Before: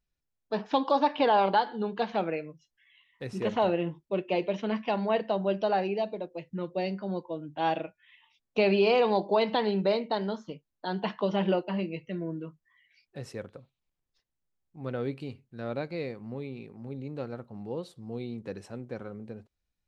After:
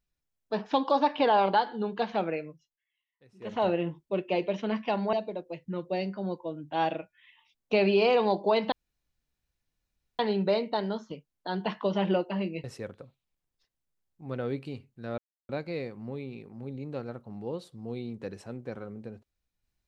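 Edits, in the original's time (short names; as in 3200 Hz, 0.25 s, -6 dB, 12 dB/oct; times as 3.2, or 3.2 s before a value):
2.48–3.67 dip -22.5 dB, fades 0.29 s
5.13–5.98 cut
9.57 insert room tone 1.47 s
12.02–13.19 cut
15.73 insert silence 0.31 s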